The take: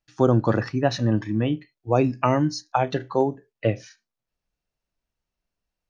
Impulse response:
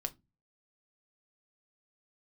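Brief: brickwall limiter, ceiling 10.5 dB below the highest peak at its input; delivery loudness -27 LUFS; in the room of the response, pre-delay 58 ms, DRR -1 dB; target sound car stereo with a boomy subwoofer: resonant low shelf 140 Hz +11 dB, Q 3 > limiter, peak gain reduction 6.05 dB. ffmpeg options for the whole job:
-filter_complex "[0:a]alimiter=limit=-16.5dB:level=0:latency=1,asplit=2[a][b];[1:a]atrim=start_sample=2205,adelay=58[c];[b][c]afir=irnorm=-1:irlink=0,volume=1dB[d];[a][d]amix=inputs=2:normalize=0,lowshelf=f=140:t=q:w=3:g=11,volume=-8dB,alimiter=limit=-17.5dB:level=0:latency=1"

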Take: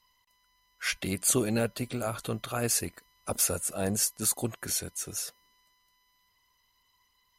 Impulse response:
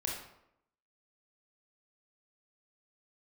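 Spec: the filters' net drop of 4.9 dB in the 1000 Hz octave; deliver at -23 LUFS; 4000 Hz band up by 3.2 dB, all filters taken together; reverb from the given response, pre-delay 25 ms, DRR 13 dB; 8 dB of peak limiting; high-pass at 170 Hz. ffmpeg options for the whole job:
-filter_complex "[0:a]highpass=170,equalizer=f=1k:t=o:g=-8,equalizer=f=4k:t=o:g=4.5,alimiter=limit=-19.5dB:level=0:latency=1,asplit=2[a][b];[1:a]atrim=start_sample=2205,adelay=25[c];[b][c]afir=irnorm=-1:irlink=0,volume=-16dB[d];[a][d]amix=inputs=2:normalize=0,volume=9dB"

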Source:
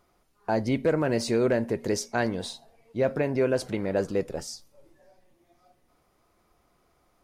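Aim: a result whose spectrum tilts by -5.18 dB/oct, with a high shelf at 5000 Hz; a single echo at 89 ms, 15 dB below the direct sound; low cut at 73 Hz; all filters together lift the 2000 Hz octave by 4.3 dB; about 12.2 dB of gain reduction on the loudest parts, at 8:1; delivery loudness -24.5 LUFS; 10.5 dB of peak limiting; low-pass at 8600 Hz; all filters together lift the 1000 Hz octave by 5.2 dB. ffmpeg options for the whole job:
-af "highpass=73,lowpass=8.6k,equalizer=f=1k:t=o:g=7,equalizer=f=2k:t=o:g=4,highshelf=f=5k:g=-8.5,acompressor=threshold=-31dB:ratio=8,alimiter=level_in=4dB:limit=-24dB:level=0:latency=1,volume=-4dB,aecho=1:1:89:0.178,volume=15dB"

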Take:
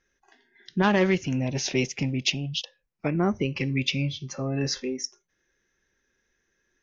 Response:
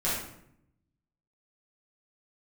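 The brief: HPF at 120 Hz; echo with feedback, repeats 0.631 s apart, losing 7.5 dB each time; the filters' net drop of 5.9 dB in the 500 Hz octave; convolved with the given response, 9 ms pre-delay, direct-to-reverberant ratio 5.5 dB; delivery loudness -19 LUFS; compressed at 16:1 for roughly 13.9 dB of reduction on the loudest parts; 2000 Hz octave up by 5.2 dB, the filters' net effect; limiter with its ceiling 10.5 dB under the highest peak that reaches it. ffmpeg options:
-filter_complex "[0:a]highpass=120,equalizer=f=500:t=o:g=-9,equalizer=f=2k:t=o:g=7,acompressor=threshold=-31dB:ratio=16,alimiter=level_in=6dB:limit=-24dB:level=0:latency=1,volume=-6dB,aecho=1:1:631|1262|1893|2524|3155:0.422|0.177|0.0744|0.0312|0.0131,asplit=2[a][b];[1:a]atrim=start_sample=2205,adelay=9[c];[b][c]afir=irnorm=-1:irlink=0,volume=-15dB[d];[a][d]amix=inputs=2:normalize=0,volume=19dB"

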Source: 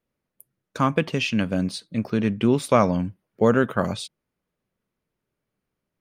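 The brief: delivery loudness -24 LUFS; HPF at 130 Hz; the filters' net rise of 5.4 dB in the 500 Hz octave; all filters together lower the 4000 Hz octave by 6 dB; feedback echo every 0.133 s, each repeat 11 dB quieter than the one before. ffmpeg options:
-af "highpass=130,equalizer=f=500:t=o:g=6.5,equalizer=f=4k:t=o:g=-8.5,aecho=1:1:133|266|399:0.282|0.0789|0.0221,volume=-4dB"

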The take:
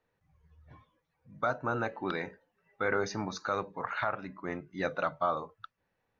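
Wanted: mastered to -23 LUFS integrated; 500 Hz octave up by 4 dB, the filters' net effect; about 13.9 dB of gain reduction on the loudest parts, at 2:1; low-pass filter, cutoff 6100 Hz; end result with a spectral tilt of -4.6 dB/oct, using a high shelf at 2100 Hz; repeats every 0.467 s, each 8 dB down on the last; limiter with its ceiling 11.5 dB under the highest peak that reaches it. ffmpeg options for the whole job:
-af "lowpass=6.1k,equalizer=f=500:t=o:g=4.5,highshelf=f=2.1k:g=5.5,acompressor=threshold=-49dB:ratio=2,alimiter=level_in=14dB:limit=-24dB:level=0:latency=1,volume=-14dB,aecho=1:1:467|934|1401|1868|2335:0.398|0.159|0.0637|0.0255|0.0102,volume=26.5dB"

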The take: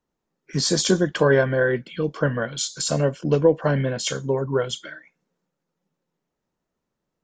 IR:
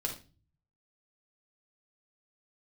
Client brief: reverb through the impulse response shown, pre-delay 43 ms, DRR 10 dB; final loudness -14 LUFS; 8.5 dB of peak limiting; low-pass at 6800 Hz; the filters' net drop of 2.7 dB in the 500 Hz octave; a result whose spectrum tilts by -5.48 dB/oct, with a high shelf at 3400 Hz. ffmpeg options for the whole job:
-filter_complex "[0:a]lowpass=6.8k,equalizer=f=500:t=o:g=-3,highshelf=f=3.4k:g=-8,alimiter=limit=-16dB:level=0:latency=1,asplit=2[a][b];[1:a]atrim=start_sample=2205,adelay=43[c];[b][c]afir=irnorm=-1:irlink=0,volume=-12.5dB[d];[a][d]amix=inputs=2:normalize=0,volume=12.5dB"

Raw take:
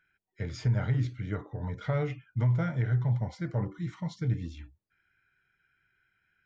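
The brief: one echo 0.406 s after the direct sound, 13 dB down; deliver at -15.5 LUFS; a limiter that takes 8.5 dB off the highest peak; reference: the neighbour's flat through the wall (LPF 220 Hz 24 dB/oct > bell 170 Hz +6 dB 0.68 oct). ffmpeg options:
-af "alimiter=level_in=3dB:limit=-24dB:level=0:latency=1,volume=-3dB,lowpass=f=220:w=0.5412,lowpass=f=220:w=1.3066,equalizer=f=170:t=o:w=0.68:g=6,aecho=1:1:406:0.224,volume=18.5dB"

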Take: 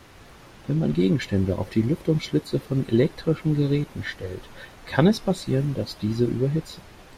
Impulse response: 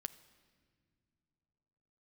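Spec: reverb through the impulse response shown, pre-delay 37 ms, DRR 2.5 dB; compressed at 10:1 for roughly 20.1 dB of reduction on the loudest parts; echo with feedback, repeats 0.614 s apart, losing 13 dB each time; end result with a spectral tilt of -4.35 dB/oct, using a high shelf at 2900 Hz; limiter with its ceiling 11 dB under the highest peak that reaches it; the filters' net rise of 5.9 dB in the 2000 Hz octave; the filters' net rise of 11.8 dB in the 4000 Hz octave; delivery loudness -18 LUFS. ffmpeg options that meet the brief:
-filter_complex "[0:a]equalizer=f=2k:t=o:g=3.5,highshelf=f=2.9k:g=5,equalizer=f=4k:t=o:g=9,acompressor=threshold=-33dB:ratio=10,alimiter=level_in=6dB:limit=-24dB:level=0:latency=1,volume=-6dB,aecho=1:1:614|1228|1842:0.224|0.0493|0.0108,asplit=2[a][b];[1:a]atrim=start_sample=2205,adelay=37[c];[b][c]afir=irnorm=-1:irlink=0,volume=0.5dB[d];[a][d]amix=inputs=2:normalize=0,volume=19.5dB"

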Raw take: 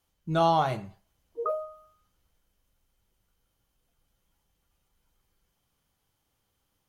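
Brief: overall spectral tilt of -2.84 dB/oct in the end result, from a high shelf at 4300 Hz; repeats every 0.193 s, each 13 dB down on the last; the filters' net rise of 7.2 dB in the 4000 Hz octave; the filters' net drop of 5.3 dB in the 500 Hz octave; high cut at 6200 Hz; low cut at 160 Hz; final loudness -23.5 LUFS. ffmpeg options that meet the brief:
-af "highpass=160,lowpass=6.2k,equalizer=f=500:t=o:g=-8.5,equalizer=f=4k:t=o:g=5.5,highshelf=f=4.3k:g=8.5,aecho=1:1:193|386|579:0.224|0.0493|0.0108,volume=7dB"

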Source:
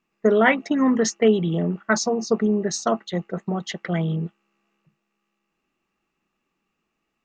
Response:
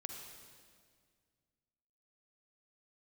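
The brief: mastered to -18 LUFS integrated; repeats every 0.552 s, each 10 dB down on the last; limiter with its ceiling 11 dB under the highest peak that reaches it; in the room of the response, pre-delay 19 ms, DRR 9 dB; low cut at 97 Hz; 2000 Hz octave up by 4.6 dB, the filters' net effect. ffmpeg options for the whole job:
-filter_complex "[0:a]highpass=97,equalizer=f=2k:t=o:g=5.5,alimiter=limit=-12.5dB:level=0:latency=1,aecho=1:1:552|1104|1656|2208:0.316|0.101|0.0324|0.0104,asplit=2[a][b];[1:a]atrim=start_sample=2205,adelay=19[c];[b][c]afir=irnorm=-1:irlink=0,volume=-6.5dB[d];[a][d]amix=inputs=2:normalize=0,volume=5dB"

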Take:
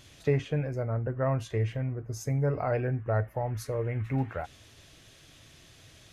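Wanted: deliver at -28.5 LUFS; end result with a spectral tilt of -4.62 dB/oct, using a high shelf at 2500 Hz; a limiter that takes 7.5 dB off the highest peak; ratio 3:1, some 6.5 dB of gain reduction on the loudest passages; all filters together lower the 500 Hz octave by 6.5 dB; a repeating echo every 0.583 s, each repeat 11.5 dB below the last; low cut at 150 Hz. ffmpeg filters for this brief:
-af "highpass=150,equalizer=f=500:t=o:g=-8.5,highshelf=f=2.5k:g=8,acompressor=threshold=-35dB:ratio=3,alimiter=level_in=5dB:limit=-24dB:level=0:latency=1,volume=-5dB,aecho=1:1:583|1166|1749:0.266|0.0718|0.0194,volume=13dB"

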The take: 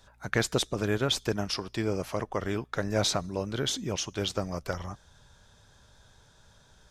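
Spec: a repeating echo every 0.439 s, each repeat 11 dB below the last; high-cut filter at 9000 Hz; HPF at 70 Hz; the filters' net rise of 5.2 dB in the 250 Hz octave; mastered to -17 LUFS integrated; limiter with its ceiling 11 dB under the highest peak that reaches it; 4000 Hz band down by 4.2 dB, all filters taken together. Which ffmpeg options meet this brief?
-af "highpass=70,lowpass=9k,equalizer=f=250:t=o:g=7,equalizer=f=4k:t=o:g=-5,alimiter=limit=-19.5dB:level=0:latency=1,aecho=1:1:439|878|1317:0.282|0.0789|0.0221,volume=15.5dB"

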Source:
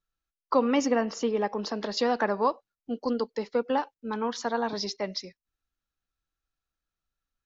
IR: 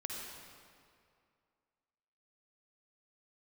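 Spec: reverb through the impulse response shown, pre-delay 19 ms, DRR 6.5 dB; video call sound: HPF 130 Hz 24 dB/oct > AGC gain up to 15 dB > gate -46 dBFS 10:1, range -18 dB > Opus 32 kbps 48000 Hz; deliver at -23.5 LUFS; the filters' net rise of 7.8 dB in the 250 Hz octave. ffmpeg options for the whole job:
-filter_complex "[0:a]equalizer=f=250:t=o:g=8.5,asplit=2[a][b];[1:a]atrim=start_sample=2205,adelay=19[c];[b][c]afir=irnorm=-1:irlink=0,volume=-7dB[d];[a][d]amix=inputs=2:normalize=0,highpass=f=130:w=0.5412,highpass=f=130:w=1.3066,dynaudnorm=m=15dB,agate=range=-18dB:threshold=-46dB:ratio=10,volume=1dB" -ar 48000 -c:a libopus -b:a 32k

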